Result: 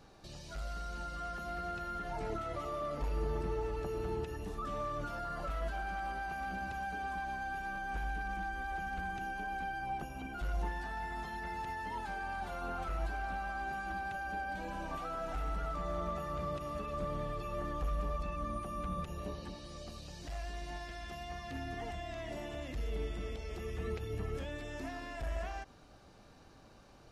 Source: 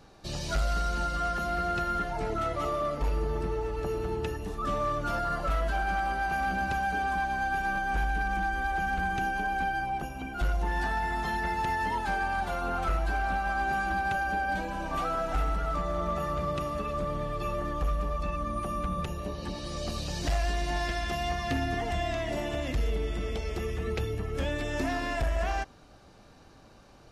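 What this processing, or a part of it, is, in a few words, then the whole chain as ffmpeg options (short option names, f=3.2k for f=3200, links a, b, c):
de-esser from a sidechain: -filter_complex "[0:a]asplit=2[a][b];[b]highpass=4.2k,apad=whole_len=1195654[c];[a][c]sidechaincompress=threshold=-55dB:ratio=3:attack=4.8:release=68,volume=-4dB"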